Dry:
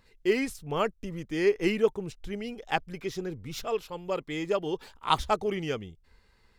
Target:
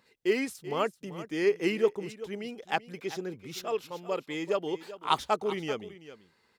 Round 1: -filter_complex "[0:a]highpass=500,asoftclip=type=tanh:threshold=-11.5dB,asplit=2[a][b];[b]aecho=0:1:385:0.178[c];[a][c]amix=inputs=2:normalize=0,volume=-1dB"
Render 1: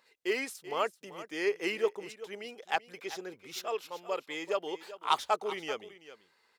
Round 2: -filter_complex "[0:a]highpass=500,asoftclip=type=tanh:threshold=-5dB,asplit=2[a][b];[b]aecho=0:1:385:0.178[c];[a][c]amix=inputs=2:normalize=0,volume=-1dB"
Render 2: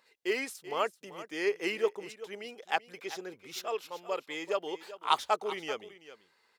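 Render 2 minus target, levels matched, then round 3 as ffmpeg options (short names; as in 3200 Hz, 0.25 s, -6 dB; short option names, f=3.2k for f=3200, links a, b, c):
250 Hz band -5.5 dB
-filter_complex "[0:a]highpass=190,asoftclip=type=tanh:threshold=-5dB,asplit=2[a][b];[b]aecho=0:1:385:0.178[c];[a][c]amix=inputs=2:normalize=0,volume=-1dB"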